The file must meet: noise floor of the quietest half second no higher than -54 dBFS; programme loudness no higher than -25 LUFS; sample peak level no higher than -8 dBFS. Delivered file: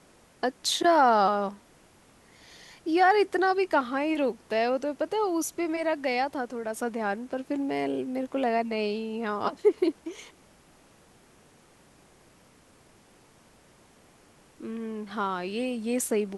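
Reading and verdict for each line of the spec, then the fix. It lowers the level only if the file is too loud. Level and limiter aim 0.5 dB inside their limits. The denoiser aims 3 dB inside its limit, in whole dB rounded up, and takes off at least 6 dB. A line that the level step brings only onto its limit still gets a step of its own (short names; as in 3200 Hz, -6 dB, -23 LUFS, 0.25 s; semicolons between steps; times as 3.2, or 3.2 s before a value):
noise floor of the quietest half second -58 dBFS: OK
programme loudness -27.5 LUFS: OK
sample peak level -10.0 dBFS: OK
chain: none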